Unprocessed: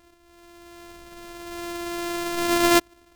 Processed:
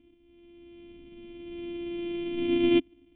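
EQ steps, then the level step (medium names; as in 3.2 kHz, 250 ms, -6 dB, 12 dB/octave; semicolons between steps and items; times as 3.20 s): cascade formant filter i; band-stop 780 Hz, Q 20; +8.0 dB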